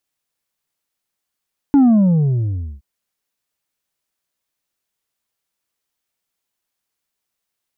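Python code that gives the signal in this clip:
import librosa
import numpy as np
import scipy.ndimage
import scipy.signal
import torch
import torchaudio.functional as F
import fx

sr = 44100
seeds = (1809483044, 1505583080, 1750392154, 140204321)

y = fx.sub_drop(sr, level_db=-8.0, start_hz=290.0, length_s=1.07, drive_db=4.0, fade_s=1.05, end_hz=65.0)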